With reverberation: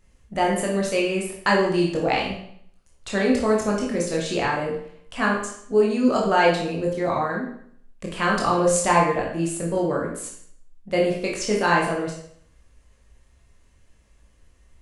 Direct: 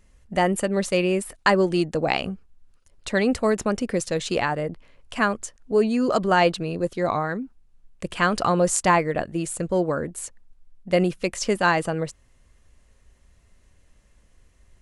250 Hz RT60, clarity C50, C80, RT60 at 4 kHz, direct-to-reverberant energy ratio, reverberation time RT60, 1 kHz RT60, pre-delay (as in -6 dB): 0.65 s, 3.5 dB, 7.0 dB, 0.60 s, -3.0 dB, 0.65 s, 0.65 s, 17 ms